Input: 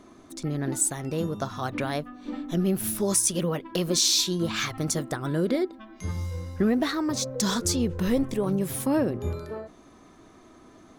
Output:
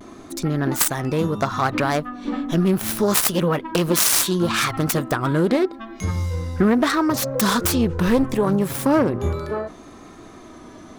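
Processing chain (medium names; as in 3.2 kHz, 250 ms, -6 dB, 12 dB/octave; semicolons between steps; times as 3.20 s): self-modulated delay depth 0.2 ms; in parallel at +0.5 dB: compression, threshold -35 dBFS, peak gain reduction 15 dB; on the sum: vibrato 0.72 Hz 47 cents; dynamic bell 1.2 kHz, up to +6 dB, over -43 dBFS, Q 1.1; trim +4 dB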